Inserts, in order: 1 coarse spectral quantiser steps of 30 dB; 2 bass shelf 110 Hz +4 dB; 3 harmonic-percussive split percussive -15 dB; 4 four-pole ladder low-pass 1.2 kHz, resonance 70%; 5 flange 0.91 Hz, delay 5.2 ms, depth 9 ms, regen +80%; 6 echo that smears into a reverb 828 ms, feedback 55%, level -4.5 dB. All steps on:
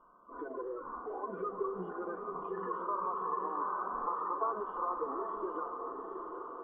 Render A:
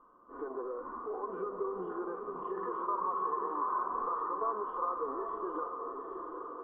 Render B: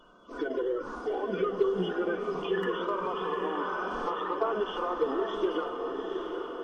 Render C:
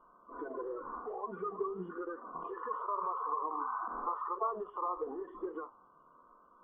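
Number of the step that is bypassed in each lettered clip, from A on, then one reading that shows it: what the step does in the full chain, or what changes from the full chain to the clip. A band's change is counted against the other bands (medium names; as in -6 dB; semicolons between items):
1, 2 kHz band -2.5 dB; 4, 1 kHz band -10.0 dB; 6, echo-to-direct -3.0 dB to none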